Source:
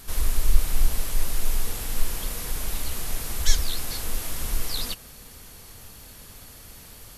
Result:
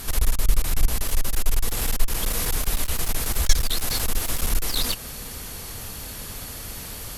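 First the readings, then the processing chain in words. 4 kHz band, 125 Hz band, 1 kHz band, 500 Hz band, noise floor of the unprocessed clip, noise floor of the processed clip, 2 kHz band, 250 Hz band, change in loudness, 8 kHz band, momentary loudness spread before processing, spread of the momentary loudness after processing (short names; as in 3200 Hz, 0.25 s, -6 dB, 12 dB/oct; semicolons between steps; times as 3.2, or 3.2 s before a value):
+4.5 dB, +3.5 dB, +5.0 dB, +5.0 dB, -46 dBFS, -36 dBFS, +5.0 dB, +5.0 dB, +3.0 dB, +4.5 dB, 18 LU, 10 LU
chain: in parallel at +2 dB: compressor, threshold -30 dBFS, peak gain reduction 21 dB; on the sum: one-sided clip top -23 dBFS; gain +3 dB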